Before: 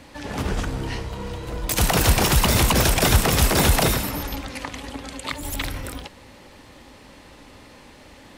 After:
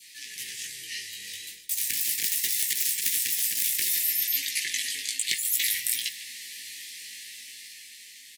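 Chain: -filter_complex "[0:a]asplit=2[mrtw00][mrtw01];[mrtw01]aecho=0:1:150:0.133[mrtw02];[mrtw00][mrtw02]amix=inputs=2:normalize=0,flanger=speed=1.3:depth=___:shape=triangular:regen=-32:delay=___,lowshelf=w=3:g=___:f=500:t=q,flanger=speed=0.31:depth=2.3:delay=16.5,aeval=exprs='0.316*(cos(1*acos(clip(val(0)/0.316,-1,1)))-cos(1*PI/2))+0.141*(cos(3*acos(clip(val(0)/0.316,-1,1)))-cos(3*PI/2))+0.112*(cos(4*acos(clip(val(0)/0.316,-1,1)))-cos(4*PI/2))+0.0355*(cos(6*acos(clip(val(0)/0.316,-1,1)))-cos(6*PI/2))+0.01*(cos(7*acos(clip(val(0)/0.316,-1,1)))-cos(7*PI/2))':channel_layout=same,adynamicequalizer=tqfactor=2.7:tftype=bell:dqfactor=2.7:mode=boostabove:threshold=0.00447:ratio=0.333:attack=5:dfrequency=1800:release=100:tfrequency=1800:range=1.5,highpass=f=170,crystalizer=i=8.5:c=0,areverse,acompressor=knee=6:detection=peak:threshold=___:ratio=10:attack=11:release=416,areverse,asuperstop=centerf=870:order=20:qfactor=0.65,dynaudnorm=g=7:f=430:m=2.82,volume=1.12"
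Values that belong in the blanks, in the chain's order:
4.5, 5.4, -13.5, 0.0282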